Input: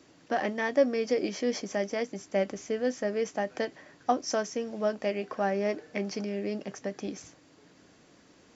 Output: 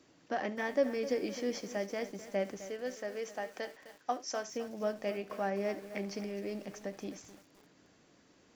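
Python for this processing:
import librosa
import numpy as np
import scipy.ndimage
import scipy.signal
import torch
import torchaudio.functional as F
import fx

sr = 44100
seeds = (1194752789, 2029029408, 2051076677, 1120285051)

y = fx.highpass(x, sr, hz=530.0, slope=6, at=(2.66, 4.47))
y = y + 10.0 ** (-17.5 / 20.0) * np.pad(y, (int(71 * sr / 1000.0), 0))[:len(y)]
y = fx.echo_crushed(y, sr, ms=258, feedback_pct=55, bits=7, wet_db=-13.0)
y = y * 10.0 ** (-6.0 / 20.0)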